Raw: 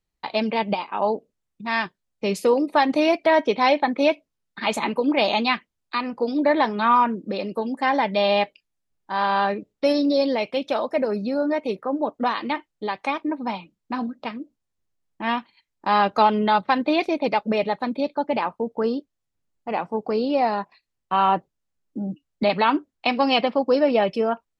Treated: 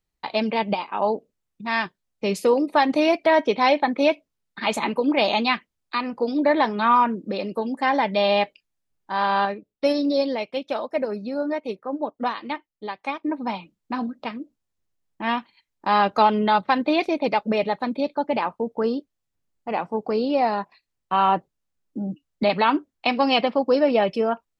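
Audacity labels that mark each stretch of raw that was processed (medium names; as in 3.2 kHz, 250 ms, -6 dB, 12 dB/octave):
9.450000	13.240000	upward expansion, over -38 dBFS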